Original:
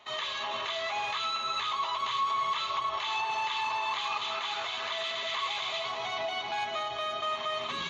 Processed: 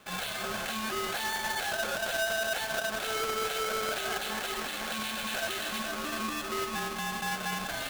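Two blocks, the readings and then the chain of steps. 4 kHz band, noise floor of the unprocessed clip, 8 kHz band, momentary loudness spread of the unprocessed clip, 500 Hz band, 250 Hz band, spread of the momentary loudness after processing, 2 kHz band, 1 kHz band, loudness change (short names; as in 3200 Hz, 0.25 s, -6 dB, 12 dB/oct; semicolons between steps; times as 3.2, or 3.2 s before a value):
-2.5 dB, -36 dBFS, n/a, 3 LU, +3.5 dB, +14.5 dB, 3 LU, +3.5 dB, -4.5 dB, -0.5 dB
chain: half-waves squared off; ring modulator 440 Hz; gain -1.5 dB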